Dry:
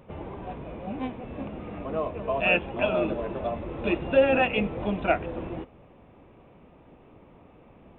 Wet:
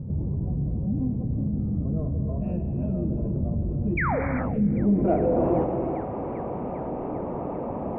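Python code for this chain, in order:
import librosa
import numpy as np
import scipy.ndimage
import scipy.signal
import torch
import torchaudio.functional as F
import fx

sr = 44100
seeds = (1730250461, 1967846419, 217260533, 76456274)

p1 = fx.low_shelf(x, sr, hz=69.0, db=-10.5)
p2 = fx.rider(p1, sr, range_db=4, speed_s=0.5)
p3 = p1 + F.gain(torch.from_numpy(p2), 0.5).numpy()
p4 = 10.0 ** (-12.0 / 20.0) * np.tanh(p3 / 10.0 ** (-12.0 / 20.0))
p5 = fx.filter_sweep_lowpass(p4, sr, from_hz=130.0, to_hz=820.0, start_s=4.49, end_s=5.5, q=1.3)
p6 = fx.spec_paint(p5, sr, seeds[0], shape='fall', start_s=3.97, length_s=0.23, low_hz=410.0, high_hz=2500.0, level_db=-32.0)
p7 = p6 + fx.echo_wet_highpass(p6, sr, ms=396, feedback_pct=71, hz=1500.0, wet_db=-19, dry=0)
p8 = fx.rev_gated(p7, sr, seeds[1], gate_ms=420, shape='flat', drr_db=6.5)
y = fx.env_flatten(p8, sr, amount_pct=50)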